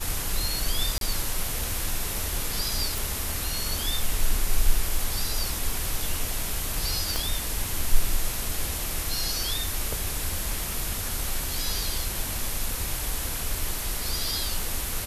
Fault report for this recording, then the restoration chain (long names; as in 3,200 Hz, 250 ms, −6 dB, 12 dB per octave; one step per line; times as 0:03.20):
0:00.98–0:01.01: drop-out 32 ms
0:02.98: click
0:07.16: click −12 dBFS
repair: click removal
repair the gap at 0:00.98, 32 ms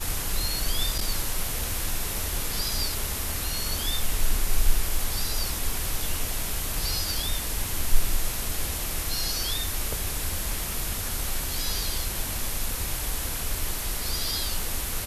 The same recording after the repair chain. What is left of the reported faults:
0:07.16: click